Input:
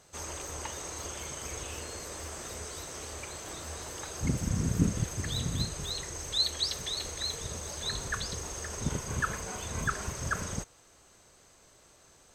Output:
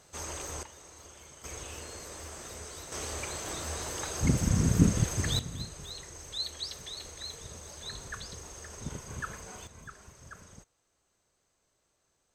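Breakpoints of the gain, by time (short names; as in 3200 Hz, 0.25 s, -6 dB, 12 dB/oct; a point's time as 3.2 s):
+0.5 dB
from 0.63 s -12 dB
from 1.44 s -3 dB
from 2.92 s +4 dB
from 5.39 s -7 dB
from 9.67 s -16.5 dB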